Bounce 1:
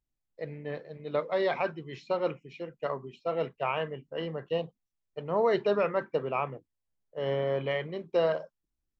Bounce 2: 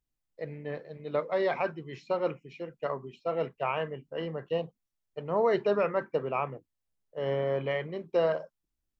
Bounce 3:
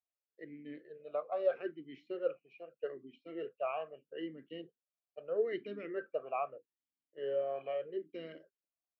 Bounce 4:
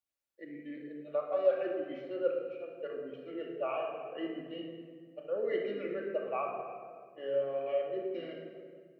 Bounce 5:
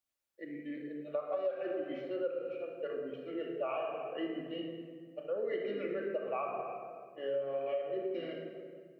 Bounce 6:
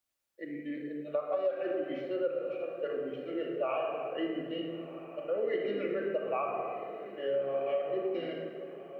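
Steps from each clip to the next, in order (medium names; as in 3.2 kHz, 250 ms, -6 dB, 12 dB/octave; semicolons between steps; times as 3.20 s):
dynamic bell 3.6 kHz, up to -5 dB, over -57 dBFS, Q 2.2
talking filter a-i 0.79 Hz; trim +1.5 dB
simulated room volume 2900 m³, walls mixed, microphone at 2.4 m
compression 5:1, threshold -34 dBFS, peak gain reduction 12 dB; trim +2 dB
echo that smears into a reverb 1358 ms, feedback 41%, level -14 dB; trim +3.5 dB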